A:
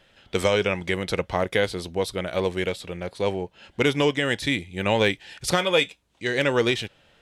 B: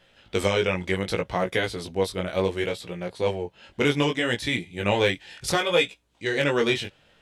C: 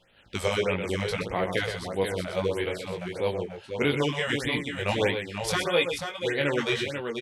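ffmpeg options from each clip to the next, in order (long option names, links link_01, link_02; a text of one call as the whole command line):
ffmpeg -i in.wav -af "flanger=delay=16.5:depth=5.3:speed=0.67,volume=2dB" out.wav
ffmpeg -i in.wav -filter_complex "[0:a]asplit=2[link_01][link_02];[link_02]aecho=0:1:124|487:0.422|0.447[link_03];[link_01][link_03]amix=inputs=2:normalize=0,afftfilt=real='re*(1-between(b*sr/1024,240*pow(6900/240,0.5+0.5*sin(2*PI*1.6*pts/sr))/1.41,240*pow(6900/240,0.5+0.5*sin(2*PI*1.6*pts/sr))*1.41))':imag='im*(1-between(b*sr/1024,240*pow(6900/240,0.5+0.5*sin(2*PI*1.6*pts/sr))/1.41,240*pow(6900/240,0.5+0.5*sin(2*PI*1.6*pts/sr))*1.41))':win_size=1024:overlap=0.75,volume=-3dB" out.wav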